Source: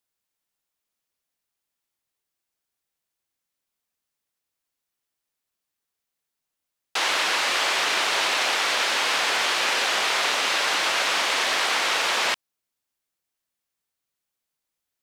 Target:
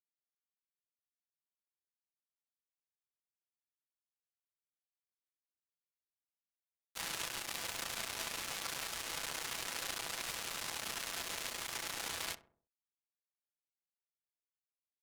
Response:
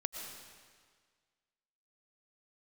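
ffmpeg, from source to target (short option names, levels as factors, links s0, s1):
-filter_complex "[0:a]aecho=1:1:6:0.7,acrossover=split=5700[s0][s1];[s0]acompressor=mode=upward:threshold=0.0398:ratio=2.5[s2];[s2][s1]amix=inputs=2:normalize=0,tremolo=f=29:d=0.462,aresample=16000,asoftclip=type=hard:threshold=0.0668,aresample=44100,flanger=delay=9.3:depth=8.6:regen=-57:speed=0.34:shape=sinusoidal,acrusher=bits=3:mix=0:aa=0.5,asplit=2[s3][s4];[s4]adelay=65,lowpass=f=1100:p=1,volume=0.224,asplit=2[s5][s6];[s6]adelay=65,lowpass=f=1100:p=1,volume=0.49,asplit=2[s7][s8];[s8]adelay=65,lowpass=f=1100:p=1,volume=0.49,asplit=2[s9][s10];[s10]adelay=65,lowpass=f=1100:p=1,volume=0.49,asplit=2[s11][s12];[s12]adelay=65,lowpass=f=1100:p=1,volume=0.49[s13];[s3][s5][s7][s9][s11][s13]amix=inputs=6:normalize=0,volume=1.12"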